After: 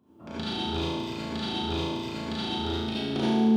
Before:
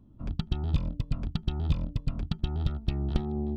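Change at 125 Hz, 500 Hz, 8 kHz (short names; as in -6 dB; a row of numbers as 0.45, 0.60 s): -6.5 dB, +9.5 dB, n/a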